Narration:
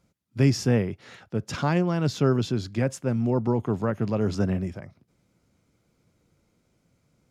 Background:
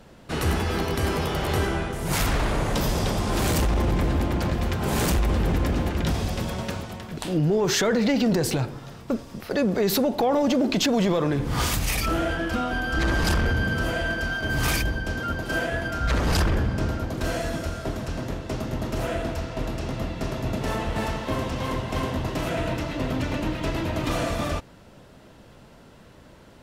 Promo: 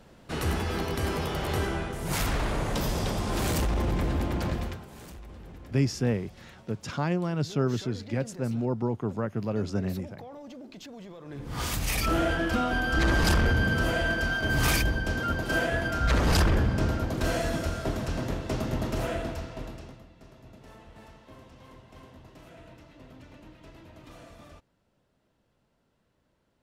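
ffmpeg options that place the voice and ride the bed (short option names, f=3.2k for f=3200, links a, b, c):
-filter_complex "[0:a]adelay=5350,volume=-4.5dB[a];[1:a]volume=18dB,afade=t=out:st=4.54:d=0.32:silence=0.11885,afade=t=in:st=11.24:d=0.95:silence=0.0749894,afade=t=out:st=18.74:d=1.29:silence=0.0749894[b];[a][b]amix=inputs=2:normalize=0"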